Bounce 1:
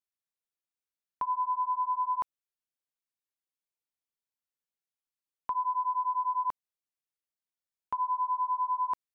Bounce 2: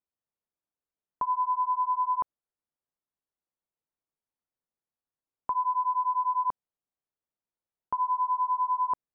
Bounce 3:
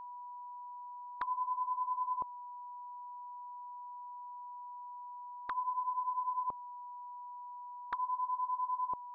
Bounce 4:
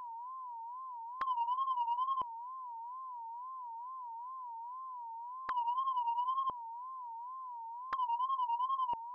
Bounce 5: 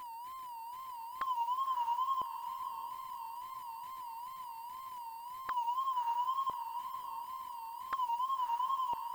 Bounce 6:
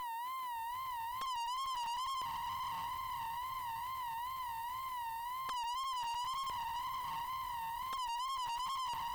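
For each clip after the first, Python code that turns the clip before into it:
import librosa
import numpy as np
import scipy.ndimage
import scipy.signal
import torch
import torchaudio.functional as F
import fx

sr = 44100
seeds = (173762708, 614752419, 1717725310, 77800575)

y1 = scipy.signal.sosfilt(scipy.signal.butter(2, 1100.0, 'lowpass', fs=sr, output='sos'), x)
y1 = F.gain(torch.from_numpy(y1), 5.0).numpy()
y2 = fx.env_flanger(y1, sr, rest_ms=9.7, full_db=-28.5)
y2 = y2 + 10.0 ** (-40.0 / 20.0) * np.sin(2.0 * np.pi * 980.0 * np.arange(len(y2)) / sr)
y2 = F.gain(torch.from_numpy(y2), -4.0).numpy()
y3 = fx.wow_flutter(y2, sr, seeds[0], rate_hz=2.1, depth_cents=120.0)
y3 = 10.0 ** (-28.5 / 20.0) * np.tanh(y3 / 10.0 ** (-28.5 / 20.0))
y3 = F.gain(torch.from_numpy(y3), 2.0).numpy()
y4 = fx.delta_hold(y3, sr, step_db=-51.0)
y4 = fx.echo_diffused(y4, sr, ms=600, feedback_pct=47, wet_db=-10.0)
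y5 = fx.tube_stage(y4, sr, drive_db=46.0, bias=0.5)
y5 = F.gain(torch.from_numpy(y5), 8.0).numpy()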